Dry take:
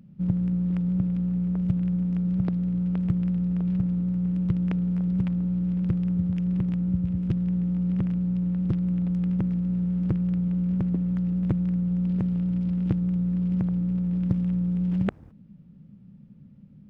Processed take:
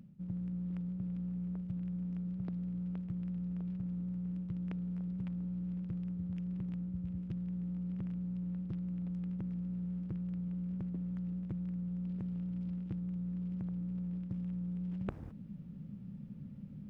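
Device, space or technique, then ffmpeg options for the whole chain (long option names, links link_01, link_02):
compression on the reversed sound: -af "areverse,acompressor=threshold=-40dB:ratio=8,areverse,volume=2.5dB"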